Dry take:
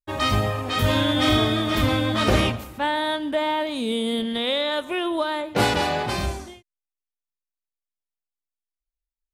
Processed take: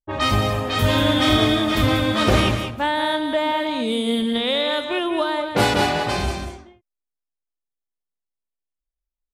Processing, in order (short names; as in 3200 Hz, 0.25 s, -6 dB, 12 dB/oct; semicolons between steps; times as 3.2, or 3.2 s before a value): low-pass opened by the level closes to 720 Hz, open at -20.5 dBFS; echo 0.188 s -7.5 dB; gain +2 dB